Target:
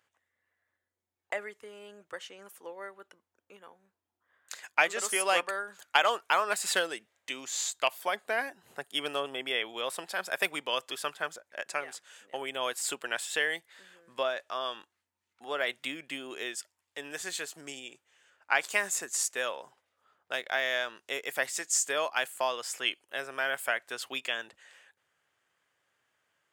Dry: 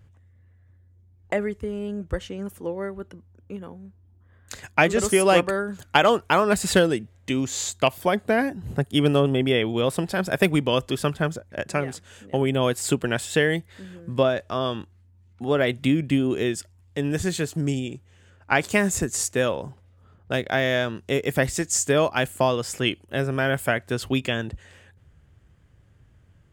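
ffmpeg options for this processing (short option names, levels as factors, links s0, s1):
-af "highpass=830,volume=0.631"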